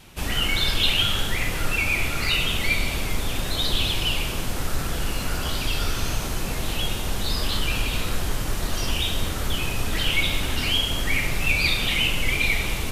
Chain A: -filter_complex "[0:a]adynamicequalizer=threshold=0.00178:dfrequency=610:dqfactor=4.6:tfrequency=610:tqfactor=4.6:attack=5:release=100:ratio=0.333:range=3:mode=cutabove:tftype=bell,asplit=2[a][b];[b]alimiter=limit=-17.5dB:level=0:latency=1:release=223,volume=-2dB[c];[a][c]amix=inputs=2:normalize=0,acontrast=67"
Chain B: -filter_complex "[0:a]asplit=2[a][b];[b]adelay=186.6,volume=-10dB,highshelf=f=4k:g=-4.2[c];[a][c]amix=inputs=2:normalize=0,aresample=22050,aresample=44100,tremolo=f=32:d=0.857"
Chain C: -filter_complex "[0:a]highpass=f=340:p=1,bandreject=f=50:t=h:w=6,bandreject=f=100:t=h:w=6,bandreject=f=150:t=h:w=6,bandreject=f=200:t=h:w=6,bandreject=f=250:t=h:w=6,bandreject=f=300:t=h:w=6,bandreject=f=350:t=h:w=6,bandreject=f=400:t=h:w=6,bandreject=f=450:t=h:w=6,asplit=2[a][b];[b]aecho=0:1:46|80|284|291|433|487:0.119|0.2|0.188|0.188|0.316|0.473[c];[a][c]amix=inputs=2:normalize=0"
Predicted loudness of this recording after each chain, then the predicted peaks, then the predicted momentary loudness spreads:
-15.0, -27.5, -23.5 LUFS; -3.0, -7.5, -8.5 dBFS; 6, 8, 8 LU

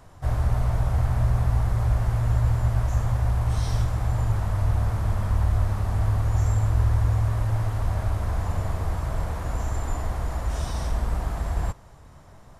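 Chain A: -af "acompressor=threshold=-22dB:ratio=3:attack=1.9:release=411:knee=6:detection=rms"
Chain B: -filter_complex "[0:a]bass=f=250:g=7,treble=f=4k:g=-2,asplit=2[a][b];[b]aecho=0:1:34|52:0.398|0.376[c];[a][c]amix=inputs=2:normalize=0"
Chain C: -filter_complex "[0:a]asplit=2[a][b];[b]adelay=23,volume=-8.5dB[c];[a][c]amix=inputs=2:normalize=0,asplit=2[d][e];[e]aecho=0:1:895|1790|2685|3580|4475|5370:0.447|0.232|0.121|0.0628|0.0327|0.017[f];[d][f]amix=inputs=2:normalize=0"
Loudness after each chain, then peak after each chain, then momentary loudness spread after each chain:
-30.0, -17.5, -25.5 LUFS; -17.5, -2.0, -9.5 dBFS; 4, 10, 6 LU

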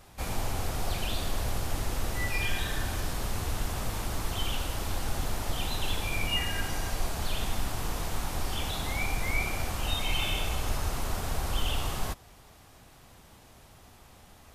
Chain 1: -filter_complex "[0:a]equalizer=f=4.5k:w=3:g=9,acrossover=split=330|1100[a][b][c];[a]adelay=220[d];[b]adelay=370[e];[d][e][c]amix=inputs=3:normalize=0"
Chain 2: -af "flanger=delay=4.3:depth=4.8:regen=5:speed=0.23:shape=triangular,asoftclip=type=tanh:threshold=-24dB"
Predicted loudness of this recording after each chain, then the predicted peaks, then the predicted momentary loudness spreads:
-32.0, -37.5 LUFS; -14.0, -24.0 dBFS; 5, 5 LU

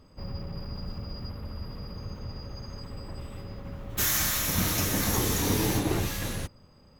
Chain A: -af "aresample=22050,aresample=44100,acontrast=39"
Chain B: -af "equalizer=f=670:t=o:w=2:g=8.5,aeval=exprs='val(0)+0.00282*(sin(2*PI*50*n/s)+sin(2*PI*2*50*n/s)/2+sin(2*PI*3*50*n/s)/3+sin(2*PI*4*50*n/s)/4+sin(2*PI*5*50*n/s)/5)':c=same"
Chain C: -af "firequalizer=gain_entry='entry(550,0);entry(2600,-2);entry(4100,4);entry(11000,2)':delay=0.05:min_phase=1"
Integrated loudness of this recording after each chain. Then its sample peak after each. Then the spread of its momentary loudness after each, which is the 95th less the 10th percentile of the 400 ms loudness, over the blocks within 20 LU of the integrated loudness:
-26.0, -26.5, -26.0 LUFS; -9.0, -11.0, -12.0 dBFS; 15, 16, 18 LU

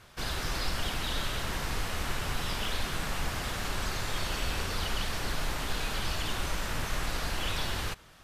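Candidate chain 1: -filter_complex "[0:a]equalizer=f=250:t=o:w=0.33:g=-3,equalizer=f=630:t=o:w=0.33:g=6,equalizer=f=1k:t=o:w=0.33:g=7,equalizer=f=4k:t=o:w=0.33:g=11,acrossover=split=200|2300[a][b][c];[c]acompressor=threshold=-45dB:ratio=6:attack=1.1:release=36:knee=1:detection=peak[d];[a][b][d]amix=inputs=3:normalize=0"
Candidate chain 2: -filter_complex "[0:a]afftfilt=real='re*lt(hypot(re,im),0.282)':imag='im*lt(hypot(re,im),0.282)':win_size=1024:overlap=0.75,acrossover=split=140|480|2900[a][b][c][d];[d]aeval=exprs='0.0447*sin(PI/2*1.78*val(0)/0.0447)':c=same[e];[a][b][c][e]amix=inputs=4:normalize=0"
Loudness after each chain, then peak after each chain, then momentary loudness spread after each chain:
-34.0, -29.5 LUFS; -18.5, -19.0 dBFS; 1, 2 LU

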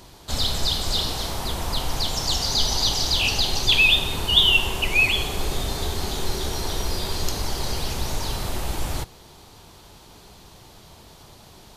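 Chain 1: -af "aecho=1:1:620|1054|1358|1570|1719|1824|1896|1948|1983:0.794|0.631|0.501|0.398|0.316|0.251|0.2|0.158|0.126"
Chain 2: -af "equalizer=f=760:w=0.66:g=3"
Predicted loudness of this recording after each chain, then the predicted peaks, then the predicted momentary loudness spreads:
-18.0, -21.5 LUFS; -2.0, -4.0 dBFS; 15, 12 LU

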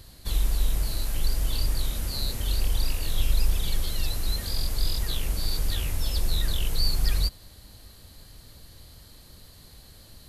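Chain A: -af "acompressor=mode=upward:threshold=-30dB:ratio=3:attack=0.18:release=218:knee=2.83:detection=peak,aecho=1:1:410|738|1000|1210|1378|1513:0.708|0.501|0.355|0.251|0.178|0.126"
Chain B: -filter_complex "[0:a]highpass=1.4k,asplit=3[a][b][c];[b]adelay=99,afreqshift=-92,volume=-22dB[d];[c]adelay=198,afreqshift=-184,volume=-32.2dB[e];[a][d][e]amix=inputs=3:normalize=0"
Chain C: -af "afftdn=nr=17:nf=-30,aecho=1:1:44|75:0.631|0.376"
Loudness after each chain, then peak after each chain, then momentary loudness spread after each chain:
-26.5, -33.5, -28.5 LUFS; -9.0, -20.0, -8.5 dBFS; 15, 20, 5 LU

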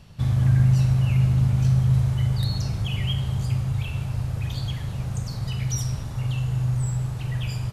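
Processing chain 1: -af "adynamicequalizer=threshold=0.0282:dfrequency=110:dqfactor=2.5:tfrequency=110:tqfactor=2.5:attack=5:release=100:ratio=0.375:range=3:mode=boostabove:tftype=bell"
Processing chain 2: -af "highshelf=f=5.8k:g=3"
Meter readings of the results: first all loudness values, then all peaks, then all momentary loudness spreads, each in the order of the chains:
-20.0, -24.0 LUFS; -6.0, -9.0 dBFS; 11, 10 LU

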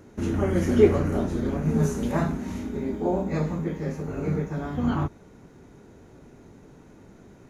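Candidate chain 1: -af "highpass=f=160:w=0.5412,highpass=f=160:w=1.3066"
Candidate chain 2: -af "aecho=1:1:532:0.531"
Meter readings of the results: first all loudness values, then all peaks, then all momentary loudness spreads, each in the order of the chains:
-27.0, -25.0 LUFS; -5.5, -4.5 dBFS; 12, 11 LU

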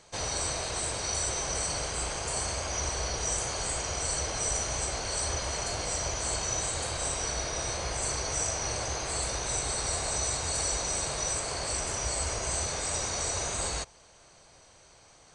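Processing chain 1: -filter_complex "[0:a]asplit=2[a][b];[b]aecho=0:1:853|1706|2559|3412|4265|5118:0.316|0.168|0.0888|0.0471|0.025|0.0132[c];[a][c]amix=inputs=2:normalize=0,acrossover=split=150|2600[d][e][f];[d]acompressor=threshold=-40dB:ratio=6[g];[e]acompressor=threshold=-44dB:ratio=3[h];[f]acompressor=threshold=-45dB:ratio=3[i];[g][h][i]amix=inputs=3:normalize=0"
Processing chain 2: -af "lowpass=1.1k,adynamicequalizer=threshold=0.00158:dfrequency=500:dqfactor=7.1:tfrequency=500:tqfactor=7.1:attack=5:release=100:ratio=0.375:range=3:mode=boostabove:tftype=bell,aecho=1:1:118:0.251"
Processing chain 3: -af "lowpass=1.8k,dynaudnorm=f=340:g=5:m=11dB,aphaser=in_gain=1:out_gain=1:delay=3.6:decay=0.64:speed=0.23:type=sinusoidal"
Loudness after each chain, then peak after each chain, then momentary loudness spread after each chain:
-38.5, -36.5, -22.5 LUFS; -26.0, -22.5, -4.0 dBFS; 1, 1, 6 LU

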